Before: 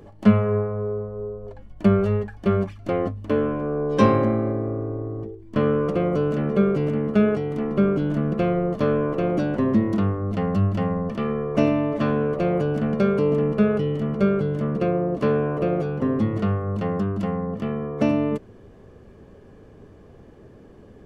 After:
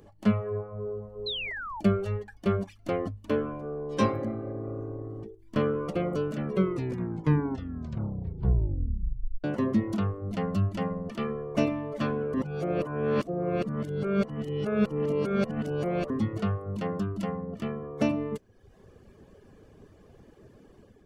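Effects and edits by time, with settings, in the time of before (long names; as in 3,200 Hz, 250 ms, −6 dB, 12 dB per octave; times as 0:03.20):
0:01.26–0:01.81: sound drawn into the spectrogram fall 820–4,200 Hz −32 dBFS
0:06.45: tape stop 2.99 s
0:12.34–0:16.10: reverse
whole clip: high-shelf EQ 3,500 Hz +8.5 dB; automatic gain control gain up to 4 dB; reverb reduction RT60 0.79 s; level −8.5 dB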